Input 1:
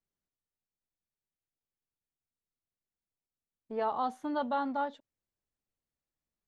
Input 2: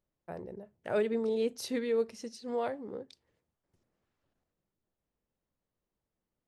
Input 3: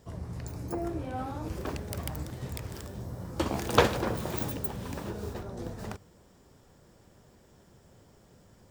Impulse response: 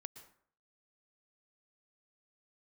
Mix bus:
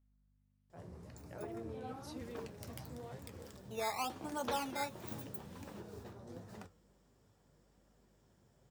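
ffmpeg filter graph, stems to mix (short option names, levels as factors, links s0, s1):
-filter_complex "[0:a]lowshelf=f=190:g=-10.5,acrusher=samples=10:mix=1:aa=0.000001:lfo=1:lforange=10:lforate=1.1,volume=0.841,asplit=2[s0][s1];[1:a]acompressor=threshold=0.0251:ratio=6,adelay=450,volume=0.316[s2];[2:a]highpass=f=81:w=0.5412,highpass=f=81:w=1.3066,flanger=delay=9:depth=7:regen=71:speed=1.2:shape=triangular,adelay=700,volume=0.668[s3];[s1]apad=whole_len=414955[s4];[s3][s4]sidechaincompress=threshold=0.01:ratio=8:attack=22:release=342[s5];[s0][s2][s5]amix=inputs=3:normalize=0,aeval=exprs='val(0)+0.000398*(sin(2*PI*50*n/s)+sin(2*PI*2*50*n/s)/2+sin(2*PI*3*50*n/s)/3+sin(2*PI*4*50*n/s)/4+sin(2*PI*5*50*n/s)/5)':c=same,flanger=delay=3.6:depth=5.5:regen=-53:speed=0.89:shape=sinusoidal"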